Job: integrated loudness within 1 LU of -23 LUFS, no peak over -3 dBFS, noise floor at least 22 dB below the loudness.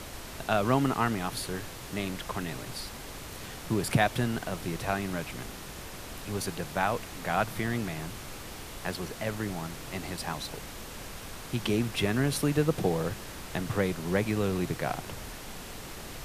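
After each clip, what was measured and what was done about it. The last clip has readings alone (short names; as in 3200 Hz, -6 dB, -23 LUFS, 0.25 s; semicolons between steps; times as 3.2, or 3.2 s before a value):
noise floor -43 dBFS; noise floor target -54 dBFS; loudness -32.0 LUFS; peak -9.5 dBFS; loudness target -23.0 LUFS
-> noise print and reduce 11 dB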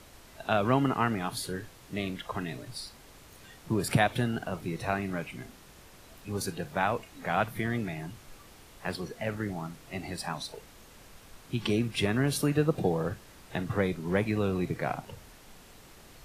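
noise floor -54 dBFS; loudness -31.5 LUFS; peak -10.0 dBFS; loudness target -23.0 LUFS
-> gain +8.5 dB; limiter -3 dBFS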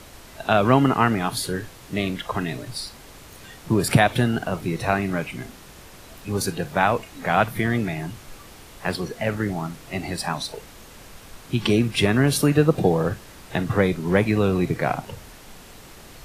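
loudness -23.0 LUFS; peak -3.0 dBFS; noise floor -45 dBFS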